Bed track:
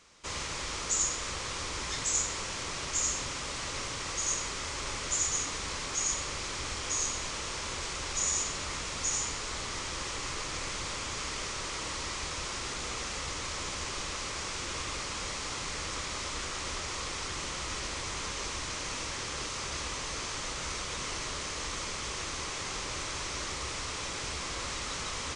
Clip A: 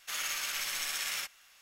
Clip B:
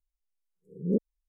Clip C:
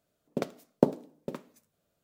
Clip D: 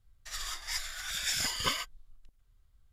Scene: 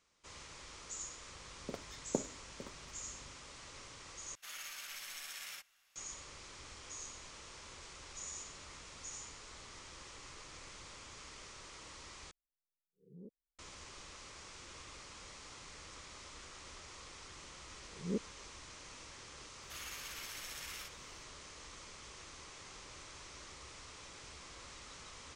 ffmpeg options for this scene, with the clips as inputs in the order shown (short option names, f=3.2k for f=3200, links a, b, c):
-filter_complex "[1:a]asplit=2[a][b];[2:a]asplit=2[c][d];[0:a]volume=-16dB[e];[3:a]aeval=exprs='val(0)+0.00447*(sin(2*PI*50*n/s)+sin(2*PI*2*50*n/s)/2+sin(2*PI*3*50*n/s)/3+sin(2*PI*4*50*n/s)/4+sin(2*PI*5*50*n/s)/5)':c=same[f];[c]acompressor=threshold=-36dB:ratio=3:attack=10:release=112:knee=1:detection=peak[g];[e]asplit=3[h][i][j];[h]atrim=end=4.354[k];[a]atrim=end=1.61,asetpts=PTS-STARTPTS,volume=-12dB[l];[i]atrim=start=5.956:end=12.314[m];[g]atrim=end=1.28,asetpts=PTS-STARTPTS,volume=-17.5dB[n];[j]atrim=start=13.586[o];[f]atrim=end=2.03,asetpts=PTS-STARTPTS,volume=-13dB,afade=t=in:d=0.004:c=hsin,afade=t=out:st=2.026:d=0.004:c=hsin,adelay=1320[p];[d]atrim=end=1.28,asetpts=PTS-STARTPTS,volume=-10.5dB,afade=t=in:d=0.004:c=hsin,afade=t=out:st=1.276:d=0.004:c=hsin,adelay=17200[q];[b]atrim=end=1.61,asetpts=PTS-STARTPTS,volume=-12.5dB,afade=t=in:d=0.004:c=hsin,afade=t=out:st=1.606:d=0.004:c=hsin,adelay=19620[r];[k][l]acrossfade=d=0.004:c1=hsin:c2=hsin[s];[s][m]acrossfade=d=0.004:c1=hsin:c2=hsin[t];[t][n]acrossfade=d=0.004:c1=hsin:c2=hsin[u];[u][o]acrossfade=d=0.004:c1=hsin:c2=hsin[v];[v][p][q][r]amix=inputs=4:normalize=0"